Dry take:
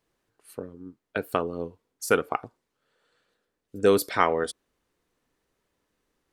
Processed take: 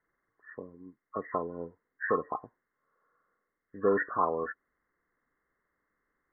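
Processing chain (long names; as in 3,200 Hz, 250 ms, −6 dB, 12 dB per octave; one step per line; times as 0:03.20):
hearing-aid frequency compression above 1,000 Hz 4 to 1
parametric band 99 Hz −5.5 dB 0.55 octaves
level −6.5 dB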